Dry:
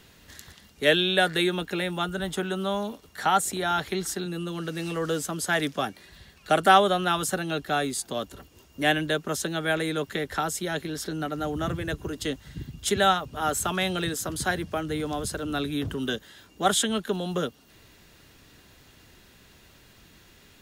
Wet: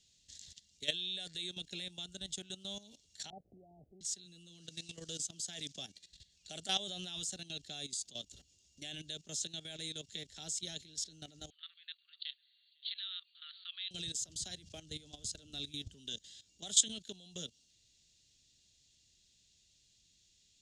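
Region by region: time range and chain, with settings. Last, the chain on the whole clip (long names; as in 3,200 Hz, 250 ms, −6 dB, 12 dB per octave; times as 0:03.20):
0:03.30–0:04.01: converter with a step at zero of −32.5 dBFS + Butterworth low-pass 780 Hz 96 dB per octave + low-shelf EQ 390 Hz −6.5 dB
0:11.50–0:13.91: linear-phase brick-wall band-pass 1,100–4,600 Hz + single-tap delay 502 ms −19.5 dB
whole clip: guitar amp tone stack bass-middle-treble 5-5-5; output level in coarse steps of 15 dB; drawn EQ curve 150 Hz 0 dB, 660 Hz −4 dB, 1,200 Hz −23 dB, 3,500 Hz +3 dB, 7,300 Hz +8 dB, 14,000 Hz −27 dB; level +3 dB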